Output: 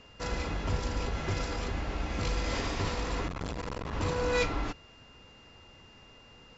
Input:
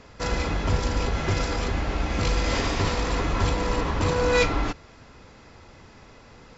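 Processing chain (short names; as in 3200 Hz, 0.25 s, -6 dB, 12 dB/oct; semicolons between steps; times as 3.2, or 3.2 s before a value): whine 2800 Hz -49 dBFS; 3.28–3.93 core saturation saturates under 460 Hz; gain -7.5 dB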